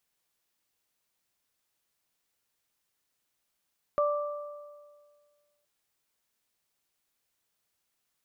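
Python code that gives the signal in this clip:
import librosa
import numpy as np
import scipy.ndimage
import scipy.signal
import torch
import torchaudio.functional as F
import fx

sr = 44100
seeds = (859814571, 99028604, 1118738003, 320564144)

y = fx.additive(sr, length_s=1.67, hz=587.0, level_db=-23.0, upper_db=(-3.5,), decay_s=1.82, upper_decays_s=(1.48,))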